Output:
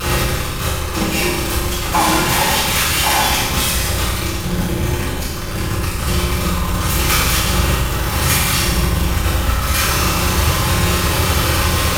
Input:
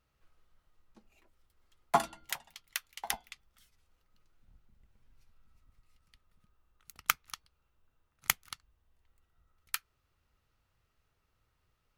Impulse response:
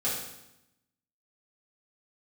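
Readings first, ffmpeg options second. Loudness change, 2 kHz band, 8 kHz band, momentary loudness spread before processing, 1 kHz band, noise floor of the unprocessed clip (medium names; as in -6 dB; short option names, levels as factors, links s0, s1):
+19.0 dB, +23.5 dB, +24.0 dB, 17 LU, +20.5 dB, -78 dBFS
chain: -filter_complex "[0:a]aeval=exprs='val(0)+0.5*0.133*sgn(val(0))':c=same[s0];[1:a]atrim=start_sample=2205,asetrate=30870,aresample=44100[s1];[s0][s1]afir=irnorm=-1:irlink=0,volume=0.841"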